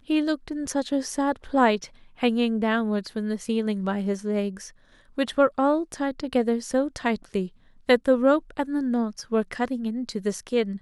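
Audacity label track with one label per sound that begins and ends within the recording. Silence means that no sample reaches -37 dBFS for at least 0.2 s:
2.200000	4.690000	sound
5.180000	7.470000	sound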